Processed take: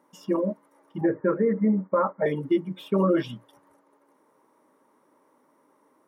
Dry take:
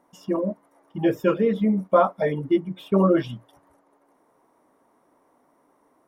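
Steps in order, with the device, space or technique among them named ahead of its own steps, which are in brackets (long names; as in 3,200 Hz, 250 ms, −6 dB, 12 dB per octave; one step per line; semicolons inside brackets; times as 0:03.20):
PA system with an anti-feedback notch (high-pass filter 150 Hz 12 dB per octave; Butterworth band-reject 710 Hz, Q 5.7; brickwall limiter −14 dBFS, peak gain reduction 7 dB)
0:01.01–0:02.26: Butterworth low-pass 2,100 Hz 96 dB per octave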